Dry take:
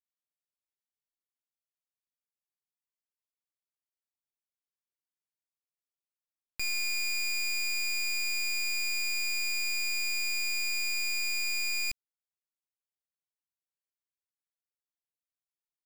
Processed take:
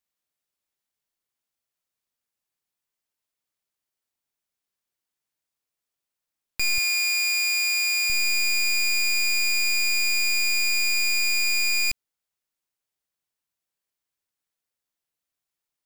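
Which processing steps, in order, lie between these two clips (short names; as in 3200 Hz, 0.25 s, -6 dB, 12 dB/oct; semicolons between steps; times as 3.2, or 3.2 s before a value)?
6.78–8.1 steep high-pass 390 Hz 36 dB/oct; gain +8.5 dB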